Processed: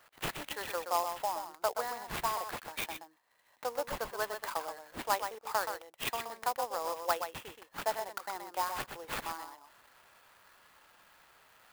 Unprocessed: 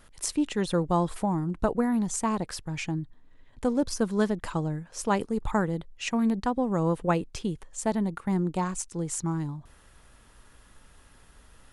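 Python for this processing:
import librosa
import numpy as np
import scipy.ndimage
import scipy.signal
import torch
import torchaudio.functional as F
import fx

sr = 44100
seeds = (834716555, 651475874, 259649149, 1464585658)

p1 = scipy.signal.sosfilt(scipy.signal.butter(4, 620.0, 'highpass', fs=sr, output='sos'), x)
p2 = fx.high_shelf(p1, sr, hz=8700.0, db=-8.0)
p3 = fx.rider(p2, sr, range_db=3, speed_s=0.5)
p4 = p2 + (p3 * librosa.db_to_amplitude(0.5))
p5 = fx.sample_hold(p4, sr, seeds[0], rate_hz=6000.0, jitter_pct=0)
p6 = p5 + fx.echo_single(p5, sr, ms=125, db=-7.5, dry=0)
p7 = fx.clock_jitter(p6, sr, seeds[1], jitter_ms=0.033)
y = p7 * librosa.db_to_amplitude(-7.5)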